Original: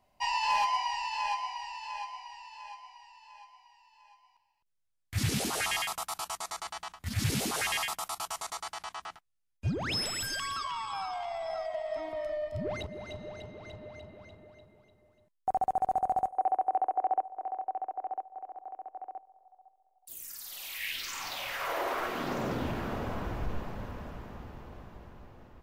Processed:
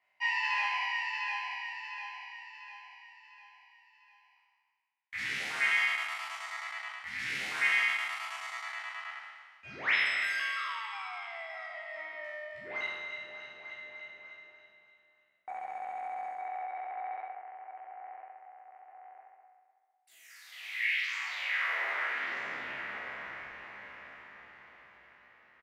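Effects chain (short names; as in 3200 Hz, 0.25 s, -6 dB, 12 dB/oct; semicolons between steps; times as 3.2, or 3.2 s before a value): spectral trails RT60 1.70 s; in parallel at -11 dB: soft clip -25 dBFS, distortion -14 dB; on the sum: band-pass 2000 Hz, Q 4.3; doubler 15 ms -5.5 dB; gain +4.5 dB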